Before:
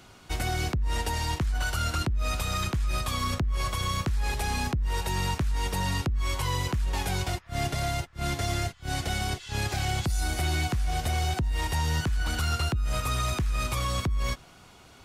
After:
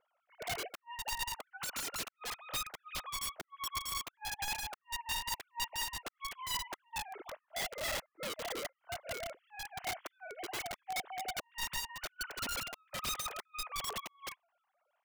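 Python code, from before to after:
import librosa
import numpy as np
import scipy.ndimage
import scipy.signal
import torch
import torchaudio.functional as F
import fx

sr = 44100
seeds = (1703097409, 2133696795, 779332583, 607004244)

y = fx.sine_speech(x, sr)
y = fx.lowpass(y, sr, hz=1100.0, slope=6)
y = (np.mod(10.0 ** (26.0 / 20.0) * y + 1.0, 2.0) - 1.0) / 10.0 ** (26.0 / 20.0)
y = fx.upward_expand(y, sr, threshold_db=-41.0, expansion=2.5)
y = y * librosa.db_to_amplitude(-4.0)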